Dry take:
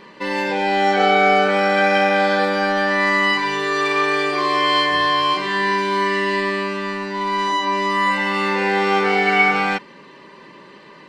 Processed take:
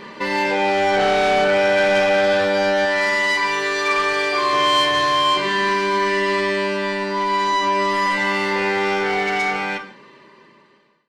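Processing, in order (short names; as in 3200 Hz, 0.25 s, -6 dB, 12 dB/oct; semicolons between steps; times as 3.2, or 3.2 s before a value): ending faded out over 2.90 s; 2.85–4.53 low shelf 320 Hz -11 dB; in parallel at -1 dB: compressor, threshold -29 dBFS, peak gain reduction 16.5 dB; on the sum: soft clip -14 dBFS, distortion -13 dB; non-linear reverb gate 0.19 s falling, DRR 5.5 dB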